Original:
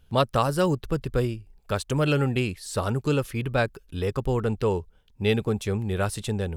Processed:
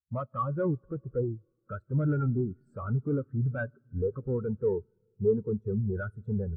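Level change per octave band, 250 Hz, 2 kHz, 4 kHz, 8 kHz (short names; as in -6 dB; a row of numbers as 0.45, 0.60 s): -4.5 dB, -11.0 dB, under -40 dB, under -40 dB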